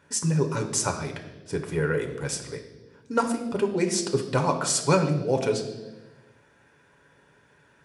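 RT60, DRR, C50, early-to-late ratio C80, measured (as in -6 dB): 1.2 s, 3.5 dB, 8.5 dB, 11.0 dB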